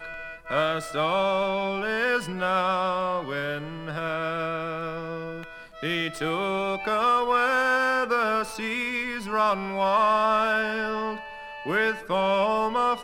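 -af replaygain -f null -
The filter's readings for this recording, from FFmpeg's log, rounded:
track_gain = +7.0 dB
track_peak = 0.206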